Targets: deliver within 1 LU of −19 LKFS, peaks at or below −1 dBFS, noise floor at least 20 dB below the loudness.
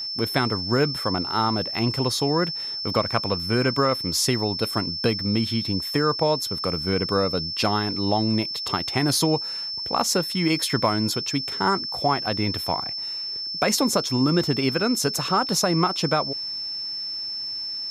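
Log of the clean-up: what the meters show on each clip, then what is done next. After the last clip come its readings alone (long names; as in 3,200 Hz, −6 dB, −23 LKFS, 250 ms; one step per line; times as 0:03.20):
crackle rate 27 per second; interfering tone 5,300 Hz; level of the tone −28 dBFS; integrated loudness −23.0 LKFS; sample peak −4.5 dBFS; target loudness −19.0 LKFS
→ click removal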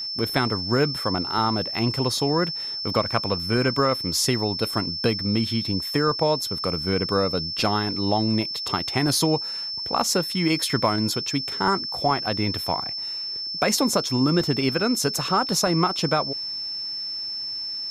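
crackle rate 0.056 per second; interfering tone 5,300 Hz; level of the tone −28 dBFS
→ notch filter 5,300 Hz, Q 30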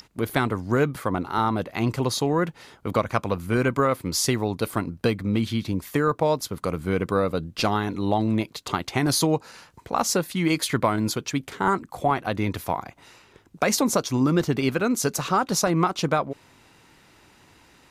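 interfering tone none found; integrated loudness −24.5 LKFS; sample peak −5.5 dBFS; target loudness −19.0 LKFS
→ level +5.5 dB
brickwall limiter −1 dBFS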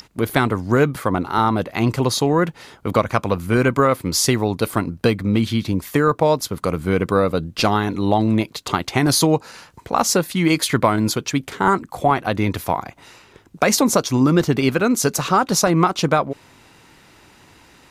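integrated loudness −19.0 LKFS; sample peak −1.0 dBFS; background noise floor −51 dBFS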